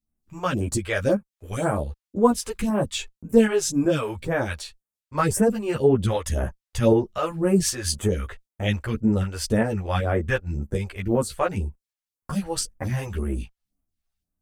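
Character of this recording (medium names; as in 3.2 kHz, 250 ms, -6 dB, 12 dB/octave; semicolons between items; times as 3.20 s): phasing stages 2, 1.9 Hz, lowest notch 180–4100 Hz; tremolo saw up 2.6 Hz, depth 40%; a shimmering, thickened sound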